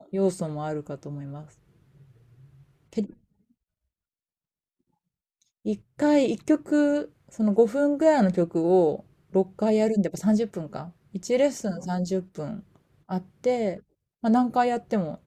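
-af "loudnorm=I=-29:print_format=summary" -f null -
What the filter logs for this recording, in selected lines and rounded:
Input Integrated:    -25.3 LUFS
Input True Peak:      -7.8 dBTP
Input LRA:            16.3 LU
Input Threshold:     -36.5 LUFS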